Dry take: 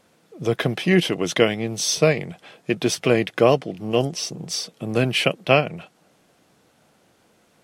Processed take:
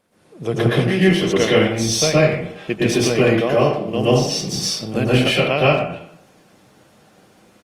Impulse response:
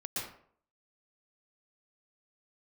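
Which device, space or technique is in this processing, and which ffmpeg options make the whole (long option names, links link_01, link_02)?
speakerphone in a meeting room: -filter_complex "[1:a]atrim=start_sample=2205[link_01];[0:a][link_01]afir=irnorm=-1:irlink=0,asplit=2[link_02][link_03];[link_03]adelay=90,highpass=300,lowpass=3400,asoftclip=type=hard:threshold=-9dB,volume=-11dB[link_04];[link_02][link_04]amix=inputs=2:normalize=0,dynaudnorm=framelen=140:gausssize=3:maxgain=6dB,volume=-1dB" -ar 48000 -c:a libopus -b:a 32k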